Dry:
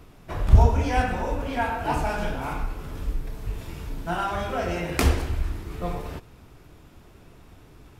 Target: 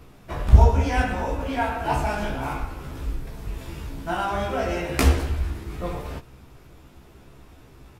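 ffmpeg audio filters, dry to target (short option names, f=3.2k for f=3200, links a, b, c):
-filter_complex "[0:a]asplit=2[a][b];[b]adelay=15,volume=-4.5dB[c];[a][c]amix=inputs=2:normalize=0"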